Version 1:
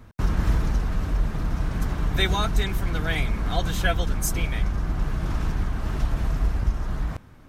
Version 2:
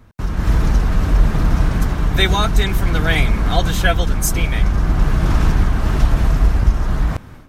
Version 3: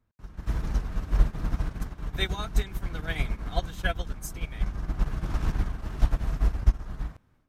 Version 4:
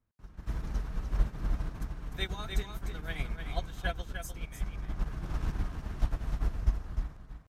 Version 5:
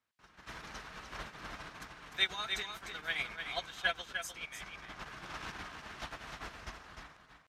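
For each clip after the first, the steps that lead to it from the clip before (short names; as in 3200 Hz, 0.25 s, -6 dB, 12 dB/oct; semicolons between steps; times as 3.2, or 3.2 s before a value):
AGC gain up to 13 dB
upward expander 2.5:1, over -21 dBFS; gain -5.5 dB
echo 0.301 s -6.5 dB; gain -6.5 dB
band-pass 2800 Hz, Q 0.66; gain +7.5 dB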